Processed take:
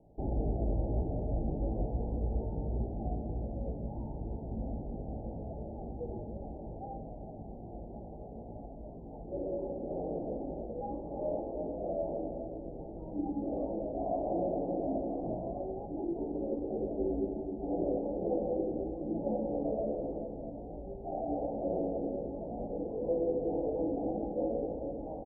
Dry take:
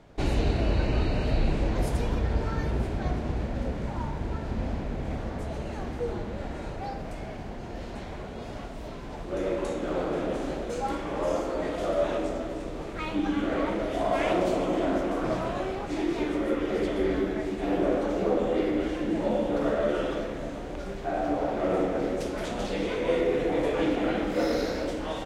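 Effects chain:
Chebyshev low-pass filter 830 Hz, order 6
double-tracking delay 18 ms −5.5 dB
level −7.5 dB

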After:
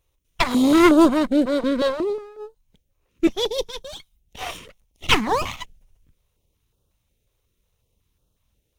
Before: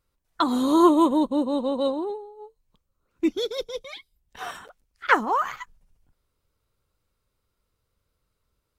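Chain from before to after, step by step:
lower of the sound and its delayed copy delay 0.31 ms
notch on a step sequencer 5.5 Hz 210–2,100 Hz
level +6.5 dB

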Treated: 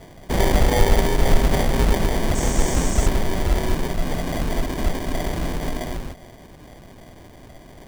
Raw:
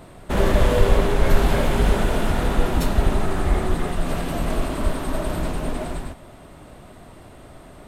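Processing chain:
decimation without filtering 33×
0:02.34–0:03.06: noise in a band 5,500–8,700 Hz −33 dBFS

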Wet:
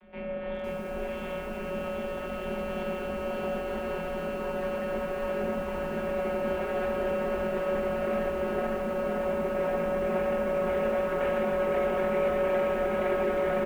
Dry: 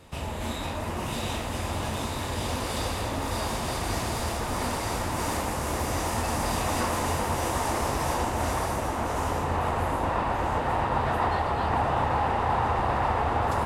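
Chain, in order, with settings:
channel vocoder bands 32, saw 179 Hz
hard clipping −27 dBFS, distortion −12 dB
double-tracking delay 20 ms −4 dB
on a send at −5 dB: convolution reverb RT60 0.55 s, pre-delay 7 ms
on the sum: single-sideband voice off tune −330 Hz 470–3,300 Hz
feedback echo at a low word length 509 ms, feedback 55%, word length 9 bits, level −4 dB
level +1.5 dB

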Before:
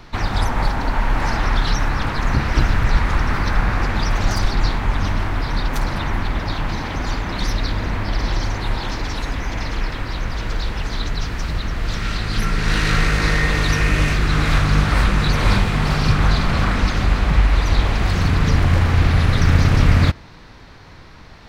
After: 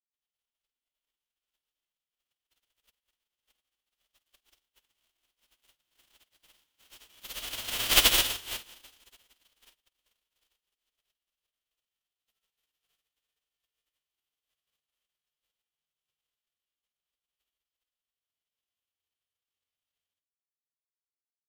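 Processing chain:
spectral envelope flattened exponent 0.1
source passing by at 0:07.99, 8 m/s, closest 2.4 metres
in parallel at −5 dB: bit reduction 5 bits
on the sum: parametric band 3,100 Hz +11.5 dB 0.51 octaves
on a send: flutter between parallel walls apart 8.5 metres, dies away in 0.29 s
on the sum: expander for the loud parts 2.5 to 1, over −39 dBFS
level −7 dB

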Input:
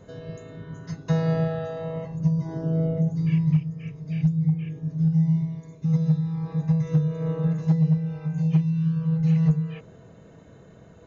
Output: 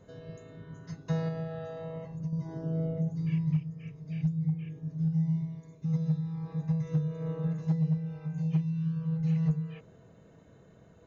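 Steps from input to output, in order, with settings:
0:01.28–0:02.33: downward compressor 3 to 1, threshold −26 dBFS, peak gain reduction 7.5 dB
level −7.5 dB

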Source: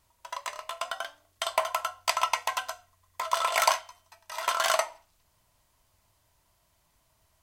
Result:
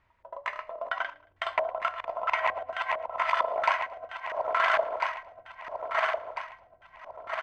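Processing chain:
feedback delay that plays each chunk backwards 674 ms, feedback 63%, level −3 dB
in parallel at +2.5 dB: brickwall limiter −17.5 dBFS, peak gain reduction 10 dB
on the sum: auto-filter low-pass square 2.2 Hz 570–2,000 Hz
repeating echo 112 ms, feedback 36%, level −22.5 dB
level −7.5 dB

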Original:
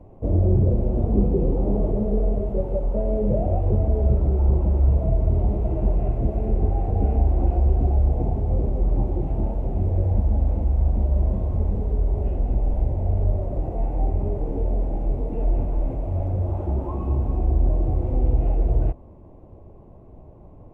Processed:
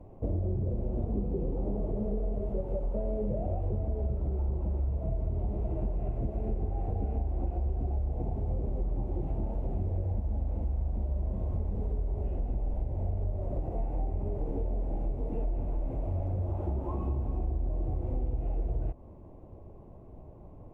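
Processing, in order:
downward compressor, threshold −24 dBFS, peak gain reduction 11 dB
level −3.5 dB

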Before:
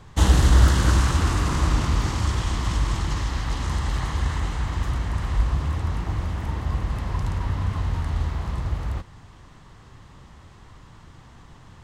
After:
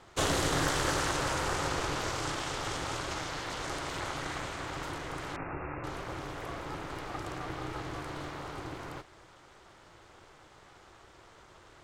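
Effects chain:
Bessel high-pass filter 250 Hz, order 2
ring modulation 220 Hz
0:05.36–0:05.84: linear-phase brick-wall low-pass 2,800 Hz

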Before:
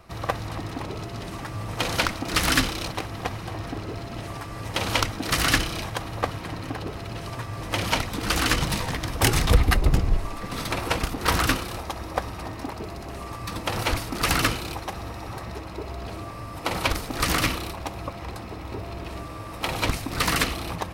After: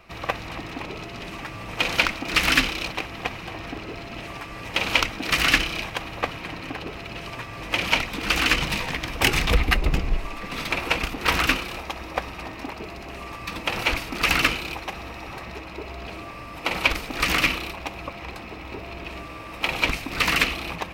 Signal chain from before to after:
graphic EQ with 15 bands 100 Hz −9 dB, 2,500 Hz +10 dB, 10,000 Hz −6 dB
level −1 dB

